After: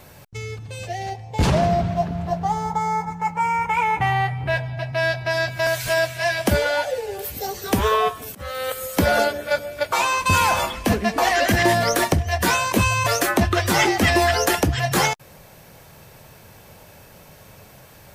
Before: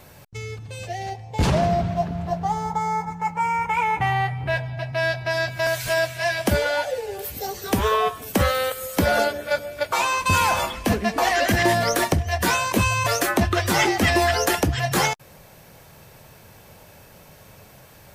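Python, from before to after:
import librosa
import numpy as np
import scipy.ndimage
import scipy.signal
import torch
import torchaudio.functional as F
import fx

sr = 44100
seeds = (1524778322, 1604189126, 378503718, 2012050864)

y = fx.auto_swell(x, sr, attack_ms=492.0, at=(8.12, 8.68), fade=0.02)
y = y * 10.0 ** (1.5 / 20.0)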